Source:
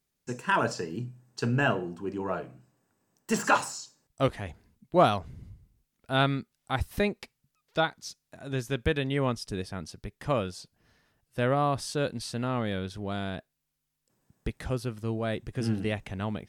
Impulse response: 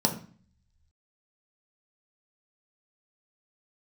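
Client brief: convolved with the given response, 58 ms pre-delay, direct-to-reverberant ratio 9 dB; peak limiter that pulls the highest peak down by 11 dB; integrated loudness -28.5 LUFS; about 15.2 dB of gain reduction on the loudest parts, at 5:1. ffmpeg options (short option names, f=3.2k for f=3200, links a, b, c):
-filter_complex "[0:a]acompressor=threshold=-33dB:ratio=5,alimiter=level_in=6dB:limit=-24dB:level=0:latency=1,volume=-6dB,asplit=2[a][b];[1:a]atrim=start_sample=2205,adelay=58[c];[b][c]afir=irnorm=-1:irlink=0,volume=-19.5dB[d];[a][d]amix=inputs=2:normalize=0,volume=11.5dB"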